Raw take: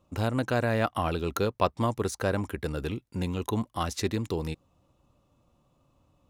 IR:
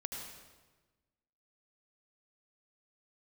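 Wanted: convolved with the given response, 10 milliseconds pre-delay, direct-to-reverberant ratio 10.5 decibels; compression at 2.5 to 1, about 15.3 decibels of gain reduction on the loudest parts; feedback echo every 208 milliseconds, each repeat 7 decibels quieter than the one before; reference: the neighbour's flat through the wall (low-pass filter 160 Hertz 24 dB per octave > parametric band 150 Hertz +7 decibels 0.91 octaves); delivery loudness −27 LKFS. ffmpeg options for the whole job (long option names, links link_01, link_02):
-filter_complex "[0:a]acompressor=threshold=-43dB:ratio=2.5,aecho=1:1:208|416|624|832|1040:0.447|0.201|0.0905|0.0407|0.0183,asplit=2[link_01][link_02];[1:a]atrim=start_sample=2205,adelay=10[link_03];[link_02][link_03]afir=irnorm=-1:irlink=0,volume=-10.5dB[link_04];[link_01][link_04]amix=inputs=2:normalize=0,lowpass=frequency=160:width=0.5412,lowpass=frequency=160:width=1.3066,equalizer=frequency=150:width_type=o:width=0.91:gain=7,volume=15.5dB"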